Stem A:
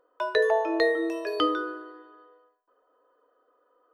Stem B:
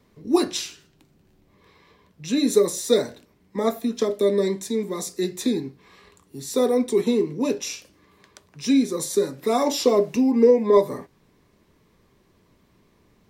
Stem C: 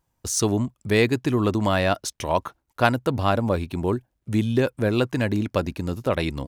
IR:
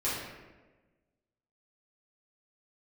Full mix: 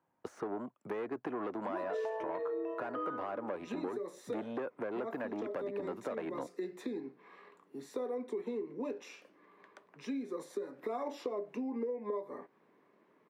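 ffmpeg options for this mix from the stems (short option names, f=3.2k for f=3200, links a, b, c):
-filter_complex "[0:a]lowpass=3.6k,adelay=1550,volume=-5dB,asplit=2[a][b];[b]volume=-18dB[c];[1:a]lowshelf=f=210:g=-11.5,acompressor=threshold=-34dB:ratio=2.5,adelay=1400,volume=-1.5dB[d];[2:a]asoftclip=type=tanh:threshold=-21.5dB,volume=0.5dB,asplit=2[e][f];[f]apad=whole_len=648004[g];[d][g]sidechaincompress=threshold=-29dB:ratio=8:attack=16:release=195[h];[a][e]amix=inputs=2:normalize=0,acrossover=split=340|1800[i][j][k];[i]acompressor=threshold=-44dB:ratio=4[l];[j]acompressor=threshold=-30dB:ratio=4[m];[k]acompressor=threshold=-46dB:ratio=4[n];[l][m][n]amix=inputs=3:normalize=0,alimiter=level_in=1dB:limit=-24dB:level=0:latency=1:release=338,volume=-1dB,volume=0dB[o];[3:a]atrim=start_sample=2205[p];[c][p]afir=irnorm=-1:irlink=0[q];[h][o][q]amix=inputs=3:normalize=0,highpass=110,acrossover=split=180 2200:gain=0.126 1 0.0794[r][s][t];[r][s][t]amix=inputs=3:normalize=0,acompressor=threshold=-34dB:ratio=4"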